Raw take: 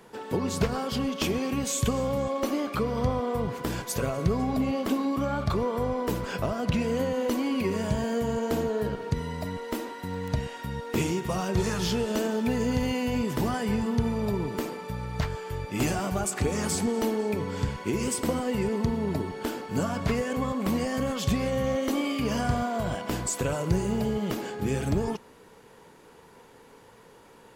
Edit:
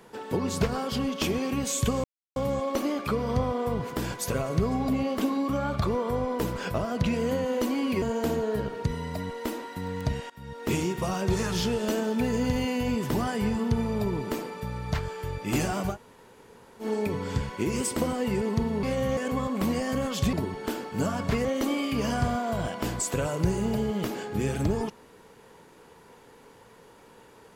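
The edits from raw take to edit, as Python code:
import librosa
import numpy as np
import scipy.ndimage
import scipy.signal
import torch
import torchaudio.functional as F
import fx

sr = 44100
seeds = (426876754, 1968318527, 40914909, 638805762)

y = fx.edit(x, sr, fx.insert_silence(at_s=2.04, length_s=0.32),
    fx.cut(start_s=7.7, length_s=0.59),
    fx.fade_in_from(start_s=10.57, length_s=0.45, floor_db=-19.0),
    fx.room_tone_fill(start_s=16.2, length_s=0.91, crossfade_s=0.1),
    fx.swap(start_s=19.1, length_s=1.12, other_s=21.38, other_length_s=0.34), tone=tone)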